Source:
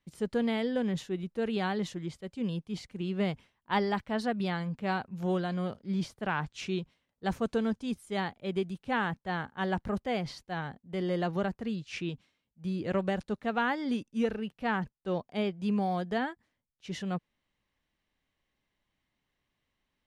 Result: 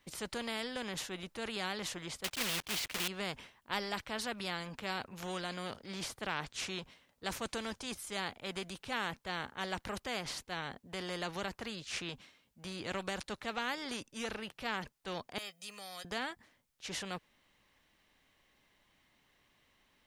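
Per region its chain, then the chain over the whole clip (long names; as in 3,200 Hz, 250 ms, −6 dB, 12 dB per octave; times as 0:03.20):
0:02.24–0:03.08: one scale factor per block 3 bits + parametric band 2,800 Hz +14 dB 1.8 octaves
0:15.38–0:16.05: first difference + comb filter 1.6 ms, depth 74%
whole clip: low-shelf EQ 260 Hz −7 dB; every bin compressed towards the loudest bin 2 to 1; level −4 dB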